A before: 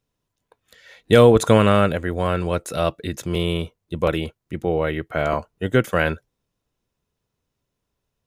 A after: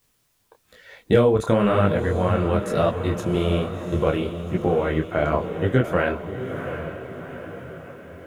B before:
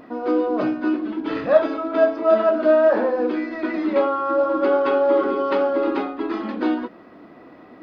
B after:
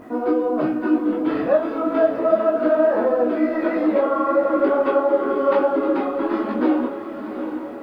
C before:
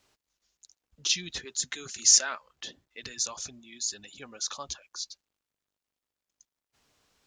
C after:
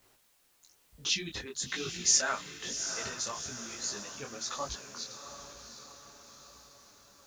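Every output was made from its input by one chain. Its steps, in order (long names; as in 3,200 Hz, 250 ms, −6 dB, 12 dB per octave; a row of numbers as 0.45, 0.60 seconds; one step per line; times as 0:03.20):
high-shelf EQ 2,800 Hz −11.5 dB
downward compressor 2.5 to 1, threshold −22 dBFS
feedback delay with all-pass diffusion 742 ms, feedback 54%, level −9 dB
bit-depth reduction 12 bits, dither triangular
micro pitch shift up and down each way 37 cents
level +8 dB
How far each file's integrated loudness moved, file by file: −2.5, +0.5, −5.0 LU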